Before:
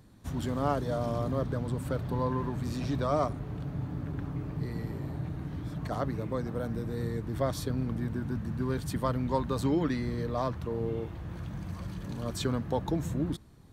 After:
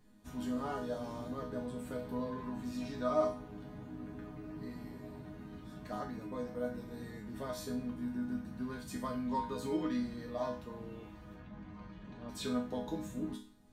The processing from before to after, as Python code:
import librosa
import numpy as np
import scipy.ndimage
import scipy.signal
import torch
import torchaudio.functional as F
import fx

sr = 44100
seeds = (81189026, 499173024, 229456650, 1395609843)

y = fx.lowpass(x, sr, hz=2800.0, slope=12, at=(11.34, 12.29))
y = fx.resonator_bank(y, sr, root=56, chord='minor', decay_s=0.42)
y = y * librosa.db_to_amplitude(12.5)